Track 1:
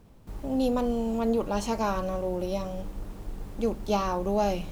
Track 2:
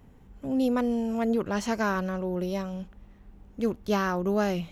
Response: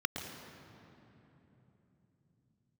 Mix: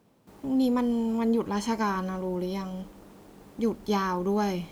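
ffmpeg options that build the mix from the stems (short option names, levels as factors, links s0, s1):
-filter_complex "[0:a]highpass=180,volume=0.668,asplit=2[s0][s1];[1:a]volume=0.708[s2];[s1]apad=whole_len=208103[s3];[s2][s3]sidechaingate=range=0.0224:threshold=0.00398:ratio=16:detection=peak[s4];[s0][s4]amix=inputs=2:normalize=0"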